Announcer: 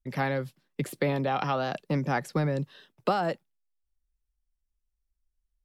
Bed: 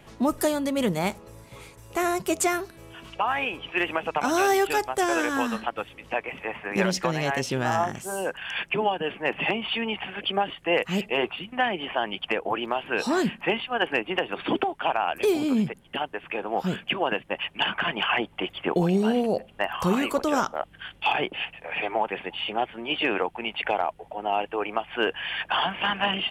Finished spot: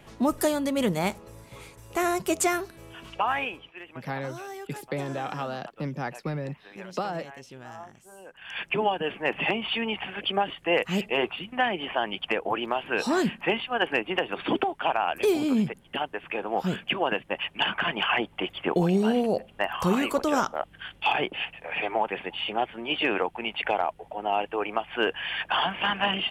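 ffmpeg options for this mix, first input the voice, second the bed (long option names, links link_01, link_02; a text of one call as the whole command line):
ffmpeg -i stem1.wav -i stem2.wav -filter_complex "[0:a]adelay=3900,volume=-4.5dB[link_01];[1:a]volume=17dB,afade=type=out:start_time=3.34:duration=0.39:silence=0.133352,afade=type=in:start_time=8.32:duration=0.42:silence=0.133352[link_02];[link_01][link_02]amix=inputs=2:normalize=0" out.wav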